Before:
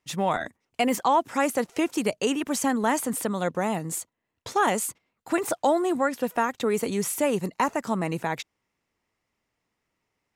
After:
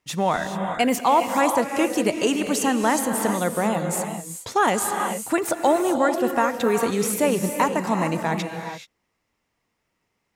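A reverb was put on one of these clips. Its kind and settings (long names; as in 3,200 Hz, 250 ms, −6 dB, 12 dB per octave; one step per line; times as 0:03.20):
reverb whose tail is shaped and stops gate 450 ms rising, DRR 5 dB
level +3 dB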